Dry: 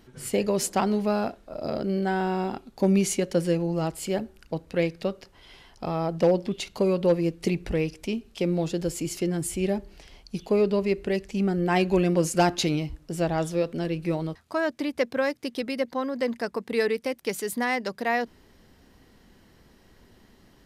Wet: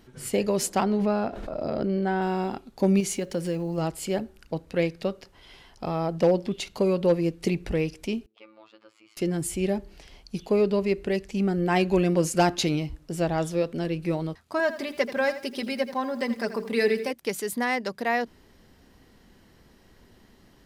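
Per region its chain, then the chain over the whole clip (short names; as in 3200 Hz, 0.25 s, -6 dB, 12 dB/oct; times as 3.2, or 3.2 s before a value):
0.83–2.22 LPF 2700 Hz 6 dB/oct + backwards sustainer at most 26 dB/s
3–3.78 block floating point 7-bit + compressor 2:1, threshold -27 dBFS
8.26–9.17 band shelf 3200 Hz +9 dB 1.3 oct + robotiser 109 Hz + auto-wah 310–1200 Hz, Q 6.2, up, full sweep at -35.5 dBFS
14.59–17.11 notches 50/100/150/200/250/300/350/400/450 Hz + comb 5 ms, depth 64% + lo-fi delay 83 ms, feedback 35%, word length 8-bit, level -12.5 dB
whole clip: dry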